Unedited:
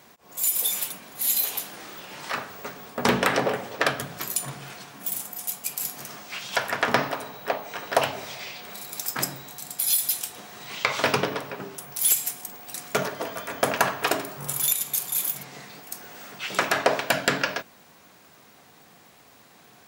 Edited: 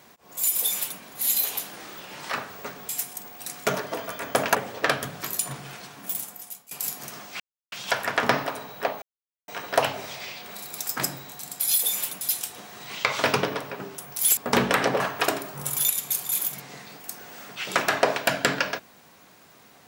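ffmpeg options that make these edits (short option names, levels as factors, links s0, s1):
-filter_complex "[0:a]asplit=10[s0][s1][s2][s3][s4][s5][s6][s7][s8][s9];[s0]atrim=end=2.892[s10];[s1]atrim=start=12.168:end=13.832[s11];[s2]atrim=start=3.518:end=5.68,asetpts=PTS-STARTPTS,afade=t=out:st=1.532:d=0.63:silence=0.0794328[s12];[s3]atrim=start=5.68:end=6.37,asetpts=PTS-STARTPTS,afade=t=in:d=0.004:c=hsin:silence=0.0794328,afade=t=out:st=0.686:d=0.004:c=hsin,apad=pad_dur=0.32[s13];[s4]atrim=start=6.37:end=7.67,asetpts=PTS-STARTPTS,afade=t=in:d=0.004:c=hsin,afade=t=out:st=1.296:d=0.004:c=hsin,apad=pad_dur=0.46[s14];[s5]atrim=start=7.67:end=10.012,asetpts=PTS-STARTPTS,afade=t=in:d=0.004:c=hsin[s15];[s6]atrim=start=0.608:end=1.002[s16];[s7]atrim=start=10.008:end=12.172[s17];[s8]atrim=start=2.888:end=3.522[s18];[s9]atrim=start=13.828[s19];[s10][s11]acrossfade=d=0.004:c1=hsin:c2=hsin[s20];[s12][s13][s14][s15]concat=n=4:v=0:a=1[s21];[s20][s21]acrossfade=d=0.004:c1=hsin:c2=hsin[s22];[s22][s16]acrossfade=d=0.004:c1=hsin:c2=hsin[s23];[s23][s17]acrossfade=d=0.004:c1=hsin:c2=hsin[s24];[s24][s18]acrossfade=d=0.004:c1=hsin:c2=hsin[s25];[s25][s19]acrossfade=d=0.004:c1=hsin:c2=hsin"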